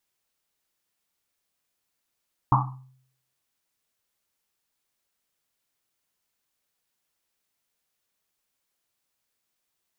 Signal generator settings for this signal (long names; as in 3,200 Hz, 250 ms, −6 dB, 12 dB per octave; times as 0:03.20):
drum after Risset, pitch 130 Hz, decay 0.66 s, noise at 1,000 Hz, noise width 390 Hz, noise 50%